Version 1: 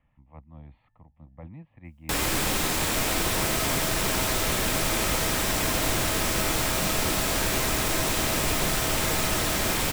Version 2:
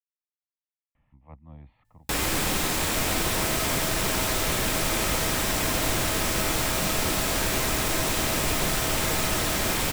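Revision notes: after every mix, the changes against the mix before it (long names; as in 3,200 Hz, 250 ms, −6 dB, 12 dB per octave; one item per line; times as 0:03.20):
speech: entry +0.95 s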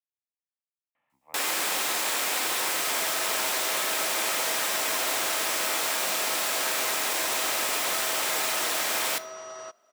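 first sound: entry −0.75 s
master: add high-pass filter 570 Hz 12 dB per octave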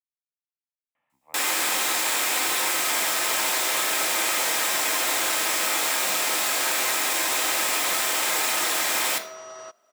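first sound: send +9.5 dB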